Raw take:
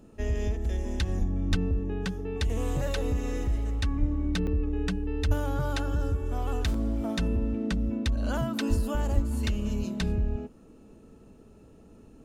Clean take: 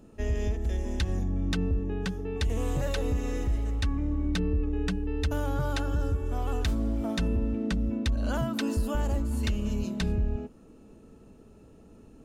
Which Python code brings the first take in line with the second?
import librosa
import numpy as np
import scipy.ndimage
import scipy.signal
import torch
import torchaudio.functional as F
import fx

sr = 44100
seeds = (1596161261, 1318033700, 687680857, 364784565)

y = fx.fix_deplosive(x, sr, at_s=(1.18, 1.5, 3.99, 5.27, 8.69, 9.14))
y = fx.fix_interpolate(y, sr, at_s=(4.47, 6.74), length_ms=2.9)